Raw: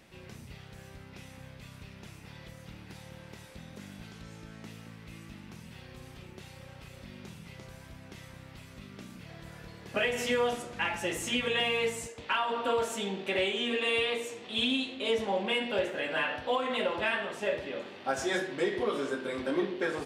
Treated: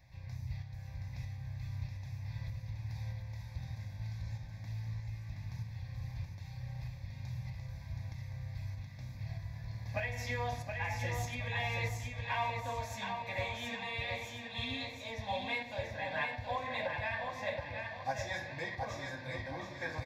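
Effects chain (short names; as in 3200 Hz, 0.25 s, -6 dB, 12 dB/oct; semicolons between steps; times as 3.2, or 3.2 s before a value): resonant low shelf 150 Hz +9 dB, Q 3; notch 1400 Hz, Q 29; tremolo saw up 1.6 Hz, depth 45%; fixed phaser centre 2000 Hz, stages 8; on a send: feedback echo 0.723 s, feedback 37%, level -5 dB; on the sum: gain -1.5 dB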